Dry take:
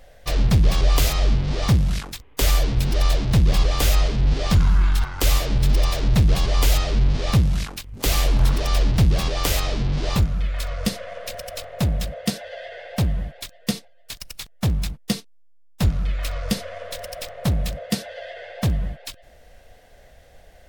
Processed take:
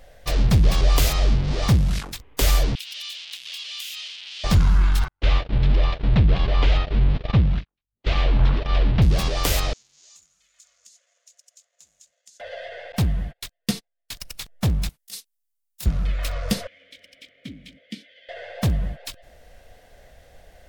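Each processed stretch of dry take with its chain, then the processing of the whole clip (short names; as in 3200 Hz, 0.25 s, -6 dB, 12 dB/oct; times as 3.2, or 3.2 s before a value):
2.75–4.44 resonant high-pass 3000 Hz, resonance Q 3.1 + compressor, threshold -31 dBFS
5.08–9.02 LPF 3600 Hz 24 dB/oct + gate -22 dBFS, range -51 dB
9.73–12.4 G.711 law mismatch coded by A + band-pass 6800 Hz, Q 7.9 + compressor 5:1, threshold -46 dBFS
12.92–14.14 gate -38 dBFS, range -30 dB + bell 560 Hz -6.5 dB 0.4 oct
14.89–15.86 pre-emphasis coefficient 0.97 + negative-ratio compressor -34 dBFS, ratio -0.5
16.67–18.29 vowel filter i + high shelf 3700 Hz +9 dB
whole clip: dry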